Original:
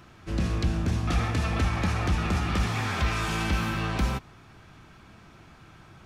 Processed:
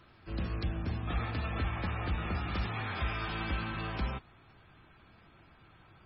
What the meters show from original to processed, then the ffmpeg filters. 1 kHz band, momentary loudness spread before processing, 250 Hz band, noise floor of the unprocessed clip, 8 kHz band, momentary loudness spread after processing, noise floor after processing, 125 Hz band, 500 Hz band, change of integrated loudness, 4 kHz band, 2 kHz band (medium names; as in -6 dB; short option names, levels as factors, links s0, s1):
-7.5 dB, 3 LU, -9.5 dB, -52 dBFS, under -40 dB, 3 LU, -60 dBFS, -8.5 dB, -7.5 dB, -8.0 dB, -8.5 dB, -7.0 dB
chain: -af "equalizer=f=180:w=1.3:g=-3,volume=0.447" -ar 22050 -c:a libmp3lame -b:a 16k